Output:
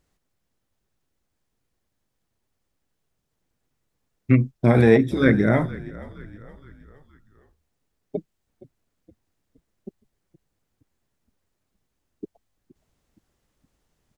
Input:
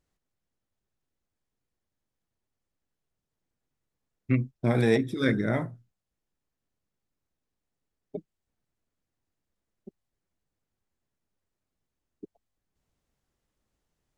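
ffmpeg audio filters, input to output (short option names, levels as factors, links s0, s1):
-filter_complex "[0:a]acrossover=split=2600[s0][s1];[s1]acompressor=threshold=0.00316:ratio=4:attack=1:release=60[s2];[s0][s2]amix=inputs=2:normalize=0,asplit=5[s3][s4][s5][s6][s7];[s4]adelay=468,afreqshift=-49,volume=0.112[s8];[s5]adelay=936,afreqshift=-98,volume=0.055[s9];[s6]adelay=1404,afreqshift=-147,volume=0.0269[s10];[s7]adelay=1872,afreqshift=-196,volume=0.0132[s11];[s3][s8][s9][s10][s11]amix=inputs=5:normalize=0,volume=2.51"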